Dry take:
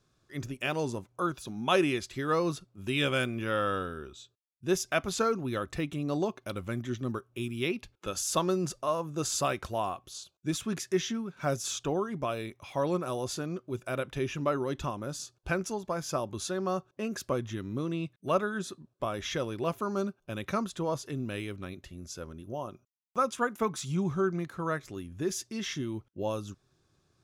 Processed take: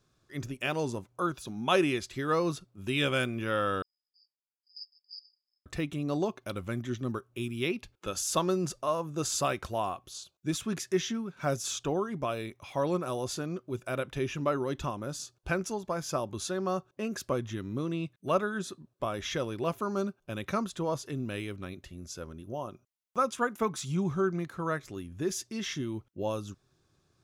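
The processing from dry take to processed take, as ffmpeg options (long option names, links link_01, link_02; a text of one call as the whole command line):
ffmpeg -i in.wav -filter_complex "[0:a]asettb=1/sr,asplit=3[link_01][link_02][link_03];[link_01]atrim=end=3.824[link_04];[link_02]atrim=start=3.82:end=5.66,asetpts=PTS-STARTPTS,afade=type=in:duration=0.004:curve=qsin,afade=type=out:start_time=1.836:duration=0.004:curve=qsin,asuperpass=centerf=4900:order=20:qfactor=7.8[link_05];[link_03]atrim=start=5.656[link_06];[link_04][link_05]acrossfade=duration=0.004:curve1=hsin:curve2=qsin[link_07];[link_07][link_06]acrossfade=duration=0.004:curve1=qsin:curve2=hsin" out.wav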